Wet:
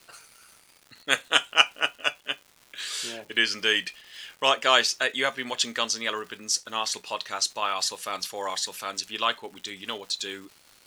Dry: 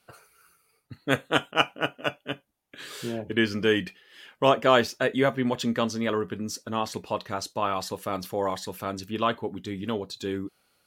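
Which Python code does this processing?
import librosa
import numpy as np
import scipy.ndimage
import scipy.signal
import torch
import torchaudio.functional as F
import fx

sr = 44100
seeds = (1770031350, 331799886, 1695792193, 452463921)

y = fx.weighting(x, sr, curve='ITU-R 468')
y = fx.dmg_crackle(y, sr, seeds[0], per_s=360.0, level_db=-40.0)
y = y * 10.0 ** (-1.0 / 20.0)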